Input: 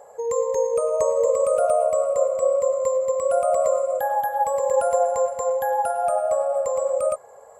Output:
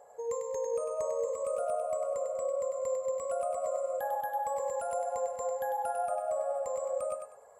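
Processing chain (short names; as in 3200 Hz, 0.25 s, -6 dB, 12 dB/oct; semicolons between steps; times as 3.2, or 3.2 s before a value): limiter -16 dBFS, peak gain reduction 7 dB; resonator 240 Hz, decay 0.5 s, harmonics odd, mix 70%; thinning echo 99 ms, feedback 26%, level -5 dB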